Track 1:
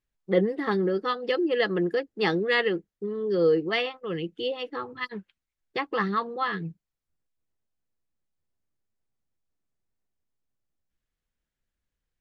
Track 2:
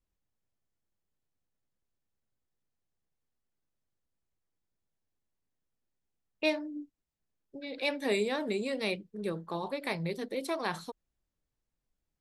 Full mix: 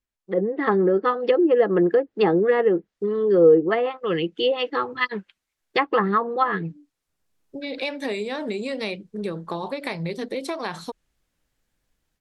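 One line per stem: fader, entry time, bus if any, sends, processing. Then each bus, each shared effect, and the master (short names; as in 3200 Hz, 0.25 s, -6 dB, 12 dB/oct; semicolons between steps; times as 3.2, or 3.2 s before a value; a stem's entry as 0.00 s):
-2.5 dB, 0.00 s, no send, low shelf 190 Hz -11 dB
-2.5 dB, 0.00 s, no send, compressor, threshold -35 dBFS, peak gain reduction 11.5 dB; auto duck -22 dB, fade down 0.30 s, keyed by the first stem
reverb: off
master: treble ducked by the level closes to 760 Hz, closed at -25 dBFS; AGC gain up to 12.5 dB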